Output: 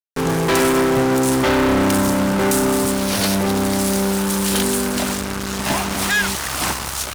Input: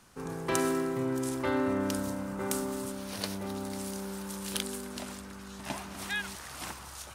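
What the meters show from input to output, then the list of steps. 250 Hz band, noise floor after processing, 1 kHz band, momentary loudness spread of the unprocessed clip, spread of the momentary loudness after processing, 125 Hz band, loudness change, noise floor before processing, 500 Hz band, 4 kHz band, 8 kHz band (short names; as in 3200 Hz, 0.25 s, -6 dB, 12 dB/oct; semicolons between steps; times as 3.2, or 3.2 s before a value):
+15.5 dB, -27 dBFS, +16.5 dB, 11 LU, 5 LU, +17.0 dB, +16.0 dB, -46 dBFS, +15.0 dB, +17.0 dB, +17.0 dB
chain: tube stage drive 40 dB, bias 0.4; fuzz box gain 44 dB, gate -48 dBFS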